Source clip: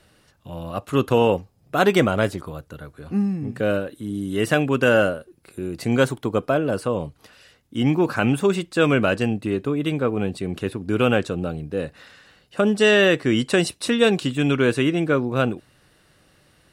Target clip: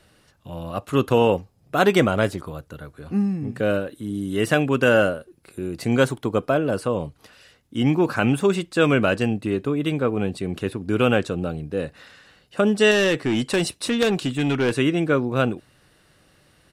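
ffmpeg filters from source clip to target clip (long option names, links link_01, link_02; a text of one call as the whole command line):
ffmpeg -i in.wav -filter_complex "[0:a]aresample=32000,aresample=44100,asettb=1/sr,asplit=3[link_01][link_02][link_03];[link_01]atrim=end=12.914[link_04];[link_02]atrim=start=12.91:end=14.77,asetpts=PTS-STARTPTS,afade=type=in:duration=0.004:curve=qsin,afade=type=out:start_time=1.856:duration=0.004:curve=qsin,aeval=exprs='0.531*(cos(1*acos(clip(val(0)/0.531,-1,1)))-cos(1*PI/2))+0.168*(cos(3*acos(clip(val(0)/0.531,-1,1)))-cos(3*PI/2))+0.106*(cos(5*acos(clip(val(0)/0.531,-1,1)))-cos(5*PI/2))':channel_layout=same[link_05];[link_03]atrim=start=14.766[link_06];[link_04][link_05]acrossfade=duration=0.004:curve1=hsin:curve2=qsin[link_07];[link_07][link_06]acrossfade=duration=0.004:curve1=qsin:curve2=hsin" out.wav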